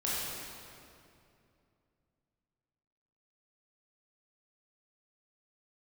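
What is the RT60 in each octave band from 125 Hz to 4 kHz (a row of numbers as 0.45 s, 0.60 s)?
3.4 s, 3.1 s, 2.8 s, 2.4 s, 2.2 s, 1.9 s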